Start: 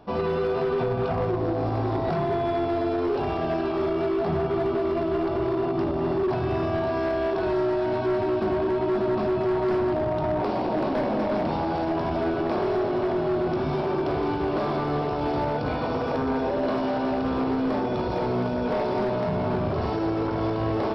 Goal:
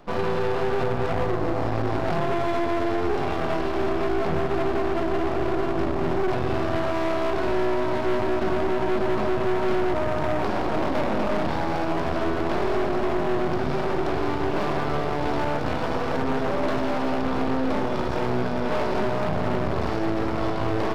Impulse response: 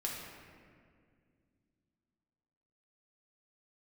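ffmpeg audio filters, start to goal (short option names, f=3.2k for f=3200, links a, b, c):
-af "aeval=exprs='max(val(0),0)':c=same,volume=5dB"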